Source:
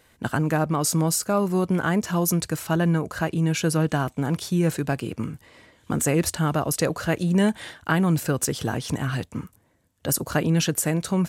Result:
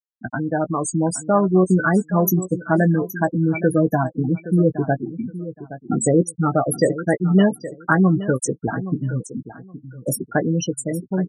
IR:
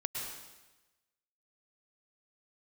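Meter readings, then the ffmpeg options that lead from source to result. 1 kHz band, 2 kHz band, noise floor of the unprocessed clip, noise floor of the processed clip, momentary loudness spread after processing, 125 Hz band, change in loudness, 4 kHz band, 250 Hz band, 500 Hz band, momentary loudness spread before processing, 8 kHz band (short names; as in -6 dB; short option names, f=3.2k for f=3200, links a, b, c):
+4.0 dB, +3.0 dB, -62 dBFS, -53 dBFS, 13 LU, +2.5 dB, +3.5 dB, -7.5 dB, +4.5 dB, +6.0 dB, 7 LU, -2.0 dB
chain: -filter_complex "[0:a]highpass=f=190:p=1,afftfilt=real='re*gte(hypot(re,im),0.178)':imag='im*gte(hypot(re,im),0.178)':win_size=1024:overlap=0.75,dynaudnorm=f=160:g=13:m=6dB,asplit=2[a][b];[b]adelay=16,volume=-9.5dB[c];[a][c]amix=inputs=2:normalize=0,asplit=2[d][e];[e]aecho=0:1:820|1640:0.2|0.0359[f];[d][f]amix=inputs=2:normalize=0,volume=2dB"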